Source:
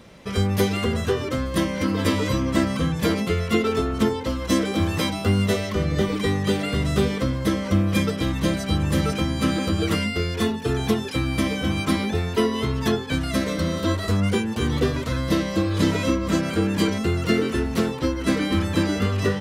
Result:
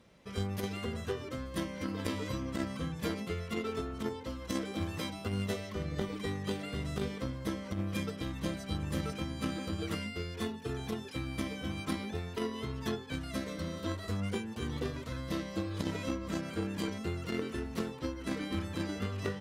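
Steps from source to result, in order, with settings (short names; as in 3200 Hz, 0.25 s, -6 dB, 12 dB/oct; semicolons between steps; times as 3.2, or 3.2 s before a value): added harmonics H 3 -15 dB, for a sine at -6.5 dBFS; negative-ratio compressor -23 dBFS, ratio -0.5; gain -8.5 dB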